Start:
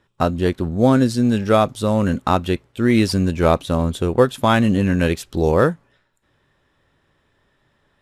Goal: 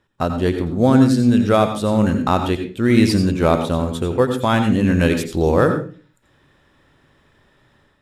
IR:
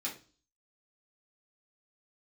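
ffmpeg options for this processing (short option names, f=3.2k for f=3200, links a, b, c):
-filter_complex "[0:a]dynaudnorm=f=230:g=3:m=9dB,asplit=2[a][b];[1:a]atrim=start_sample=2205,lowshelf=f=190:g=8,adelay=83[c];[b][c]afir=irnorm=-1:irlink=0,volume=-9dB[d];[a][d]amix=inputs=2:normalize=0,volume=-3dB"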